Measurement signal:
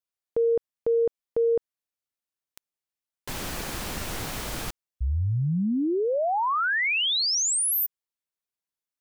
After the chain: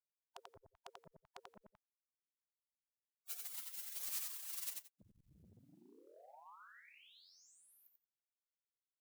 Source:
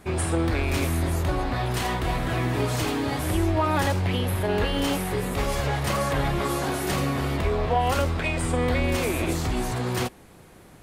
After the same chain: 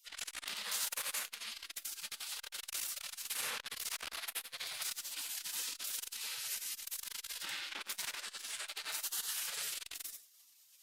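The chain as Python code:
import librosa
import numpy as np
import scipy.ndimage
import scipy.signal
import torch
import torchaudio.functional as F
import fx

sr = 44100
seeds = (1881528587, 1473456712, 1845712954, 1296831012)

y = fx.spec_gate(x, sr, threshold_db=-30, keep='weak')
y = fx.echo_multitap(y, sr, ms=(89, 175), db=(-4.0, -19.0))
y = fx.transformer_sat(y, sr, knee_hz=3900.0)
y = y * librosa.db_to_amplitude(3.5)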